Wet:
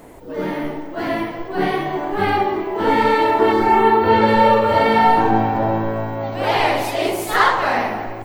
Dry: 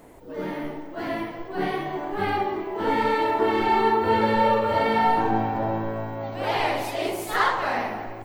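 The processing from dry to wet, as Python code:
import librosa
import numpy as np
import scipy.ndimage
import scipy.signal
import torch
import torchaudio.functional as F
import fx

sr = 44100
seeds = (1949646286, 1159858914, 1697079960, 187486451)

y = fx.peak_eq(x, sr, hz=fx.line((3.52, 2300.0), (4.27, 13000.0)), db=-14.5, octaves=0.57, at=(3.52, 4.27), fade=0.02)
y = F.gain(torch.from_numpy(y), 7.0).numpy()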